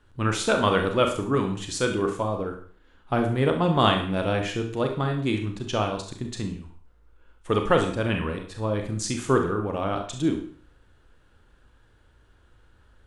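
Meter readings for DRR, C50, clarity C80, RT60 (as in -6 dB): 4.0 dB, 8.0 dB, 12.0 dB, 0.45 s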